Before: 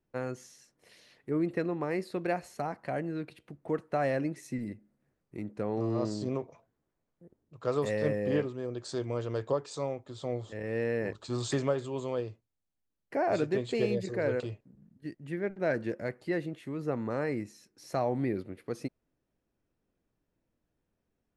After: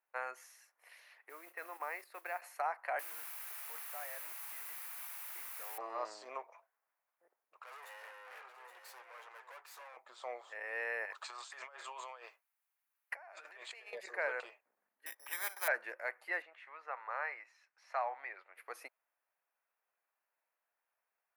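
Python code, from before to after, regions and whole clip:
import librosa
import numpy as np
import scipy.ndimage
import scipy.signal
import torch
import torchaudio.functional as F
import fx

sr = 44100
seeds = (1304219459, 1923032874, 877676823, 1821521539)

y = fx.chain(x, sr, fx.level_steps(step_db=12),
    fx.mod_noise(seeds[0], snr_db=25), at=(1.29, 2.42))
y = fx.chain(y, sr, fx.level_steps(step_db=22),
    fx.quant_dither(seeds[1], bits=8, dither='triangular'), at=(2.99, 5.78))
y = fx.chain(y, sr, fx.highpass(hz=960.0, slope=6),
    fx.tube_stage(drive_db=47.0, bias=0.8),
    fx.echo_single(ms=821, db=-8.0), at=(7.62, 9.97))
y = fx.chain(y, sr, fx.highpass(hz=950.0, slope=6),
    fx.over_compress(threshold_db=-46.0, ratio=-1.0), at=(11.05, 13.93))
y = fx.chain(y, sr, fx.notch_comb(f0_hz=680.0),
    fx.resample_bad(factor=8, down='filtered', up='hold'),
    fx.spectral_comp(ratio=2.0), at=(15.06, 15.68))
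y = fx.chain(y, sr, fx.highpass(hz=690.0, slope=12),
    fx.air_absorb(metres=160.0), at=(16.42, 18.56))
y = scipy.signal.sosfilt(scipy.signal.butter(4, 790.0, 'highpass', fs=sr, output='sos'), y)
y = fx.band_shelf(y, sr, hz=5100.0, db=-11.0, octaves=1.7)
y = y * librosa.db_to_amplitude(3.5)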